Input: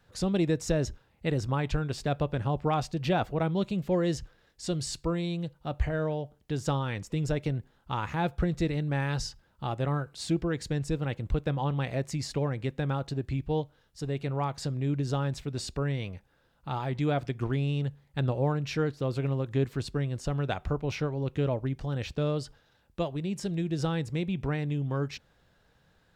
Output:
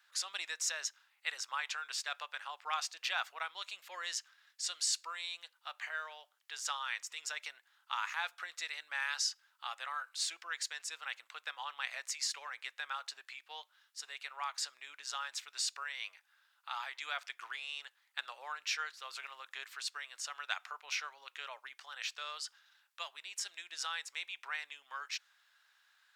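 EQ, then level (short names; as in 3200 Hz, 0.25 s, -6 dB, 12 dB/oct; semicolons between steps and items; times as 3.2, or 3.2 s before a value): HPF 1200 Hz 24 dB/oct; dynamic EQ 6300 Hz, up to +4 dB, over -57 dBFS, Q 1.8; +1.5 dB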